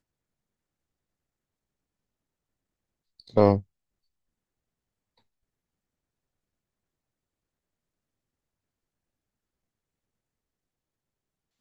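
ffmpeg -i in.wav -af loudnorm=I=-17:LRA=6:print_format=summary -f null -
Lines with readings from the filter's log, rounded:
Input Integrated:    -23.5 LUFS
Input True Peak:      -4.7 dBTP
Input LRA:             0.0 LU
Input Threshold:     -35.3 LUFS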